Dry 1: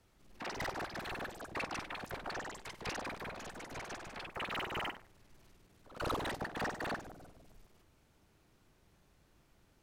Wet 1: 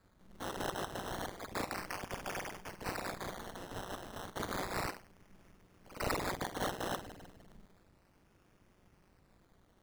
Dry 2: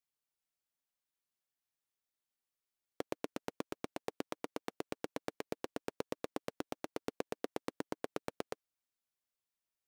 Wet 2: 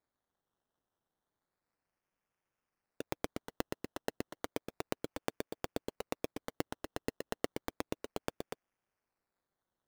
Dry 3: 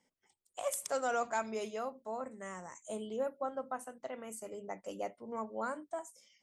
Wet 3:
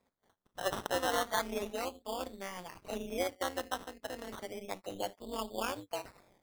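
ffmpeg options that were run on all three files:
-af "acrusher=samples=15:mix=1:aa=0.000001:lfo=1:lforange=9:lforate=0.32,tremolo=f=190:d=0.857,volume=5dB"

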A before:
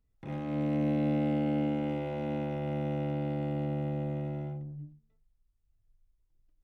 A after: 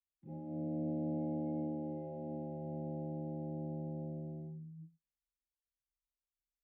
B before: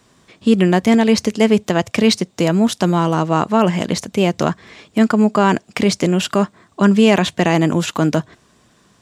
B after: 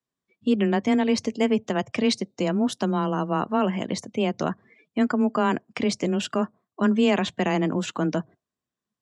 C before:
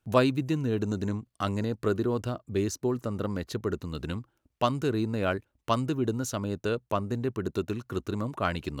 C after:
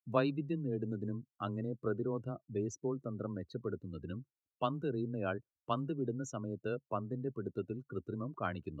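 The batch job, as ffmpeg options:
-af "afreqshift=14,afftdn=nr=27:nf=-34,volume=-8.5dB"

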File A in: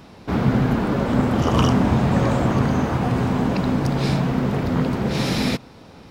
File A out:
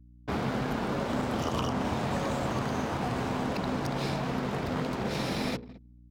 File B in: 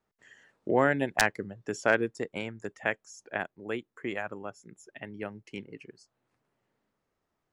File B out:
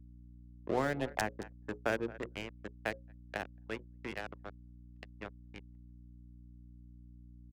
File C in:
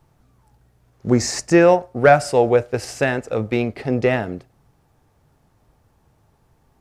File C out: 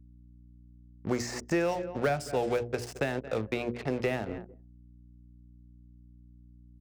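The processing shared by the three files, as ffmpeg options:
-filter_complex "[0:a]aeval=exprs='sgn(val(0))*max(abs(val(0))-0.0158,0)':c=same,bandreject=f=60:t=h:w=6,bandreject=f=120:t=h:w=6,bandreject=f=180:t=h:w=6,bandreject=f=240:t=h:w=6,bandreject=f=300:t=h:w=6,bandreject=f=360:t=h:w=6,bandreject=f=420:t=h:w=6,bandreject=f=480:t=h:w=6,bandreject=f=540:t=h:w=6,asplit=2[a][b];[b]aecho=0:1:220|440:0.0891|0.0232[c];[a][c]amix=inputs=2:normalize=0,acrossover=split=360|1100|2800[d][e][f][g];[d]acompressor=threshold=-31dB:ratio=4[h];[e]acompressor=threshold=-30dB:ratio=4[i];[f]acompressor=threshold=-39dB:ratio=4[j];[g]acompressor=threshold=-39dB:ratio=4[k];[h][i][j][k]amix=inputs=4:normalize=0,anlmdn=0.158,aeval=exprs='val(0)+0.00316*(sin(2*PI*60*n/s)+sin(2*PI*2*60*n/s)/2+sin(2*PI*3*60*n/s)/3+sin(2*PI*4*60*n/s)/4+sin(2*PI*5*60*n/s)/5)':c=same,volume=-2.5dB"

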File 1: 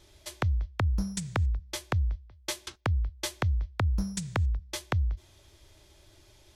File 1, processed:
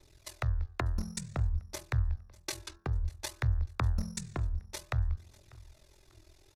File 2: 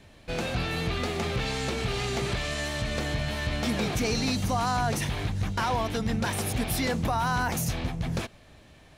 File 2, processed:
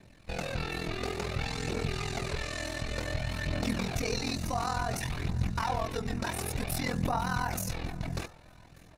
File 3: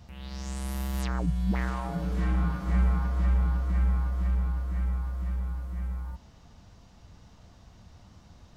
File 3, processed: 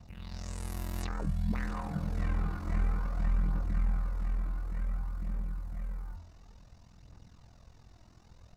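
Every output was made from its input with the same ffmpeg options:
-af "bandreject=f=3.2k:w=8,aeval=exprs='val(0)*sin(2*PI*21*n/s)':c=same,bandreject=f=84.16:t=h:w=4,bandreject=f=168.32:t=h:w=4,bandreject=f=252.48:t=h:w=4,bandreject=f=336.64:t=h:w=4,bandreject=f=420.8:t=h:w=4,bandreject=f=504.96:t=h:w=4,bandreject=f=589.12:t=h:w=4,bandreject=f=673.28:t=h:w=4,bandreject=f=757.44:t=h:w=4,bandreject=f=841.6:t=h:w=4,bandreject=f=925.76:t=h:w=4,bandreject=f=1.00992k:t=h:w=4,bandreject=f=1.09408k:t=h:w=4,bandreject=f=1.17824k:t=h:w=4,bandreject=f=1.2624k:t=h:w=4,bandreject=f=1.34656k:t=h:w=4,bandreject=f=1.43072k:t=h:w=4,bandreject=f=1.51488k:t=h:w=4,bandreject=f=1.59904k:t=h:w=4,bandreject=f=1.6832k:t=h:w=4,bandreject=f=1.76736k:t=h:w=4,bandreject=f=1.85152k:t=h:w=4,aphaser=in_gain=1:out_gain=1:delay=3.2:decay=0.36:speed=0.56:type=triangular,aecho=1:1:594|1188|1782:0.0668|0.0267|0.0107,volume=-2dB"

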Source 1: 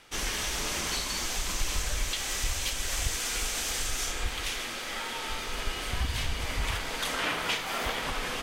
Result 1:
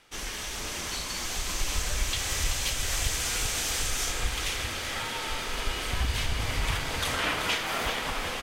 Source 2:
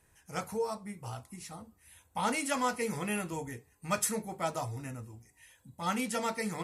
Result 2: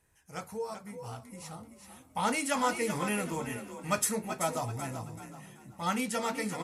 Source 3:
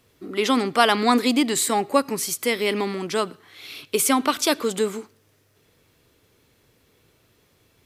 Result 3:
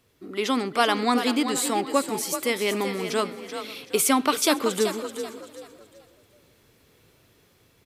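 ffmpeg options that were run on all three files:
-filter_complex "[0:a]asplit=2[a][b];[b]aecho=0:1:503|1006:0.0708|0.017[c];[a][c]amix=inputs=2:normalize=0,dynaudnorm=f=250:g=11:m=5.5dB,asplit=2[d][e];[e]asplit=4[f][g][h][i];[f]adelay=382,afreqshift=39,volume=-9dB[j];[g]adelay=764,afreqshift=78,volume=-18.9dB[k];[h]adelay=1146,afreqshift=117,volume=-28.8dB[l];[i]adelay=1528,afreqshift=156,volume=-38.7dB[m];[j][k][l][m]amix=inputs=4:normalize=0[n];[d][n]amix=inputs=2:normalize=0,volume=-4dB"

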